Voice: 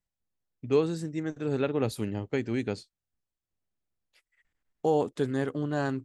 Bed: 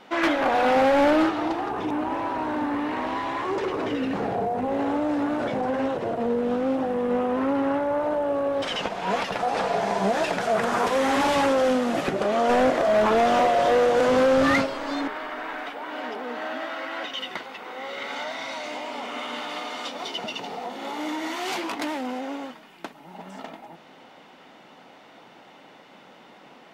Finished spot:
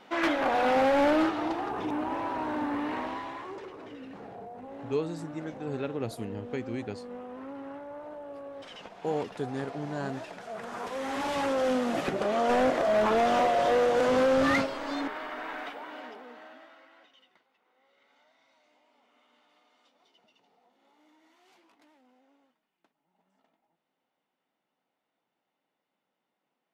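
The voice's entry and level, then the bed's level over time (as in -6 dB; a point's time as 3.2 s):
4.20 s, -5.5 dB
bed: 2.95 s -4.5 dB
3.75 s -17.5 dB
10.44 s -17.5 dB
11.78 s -4.5 dB
15.68 s -4.5 dB
17.45 s -34 dB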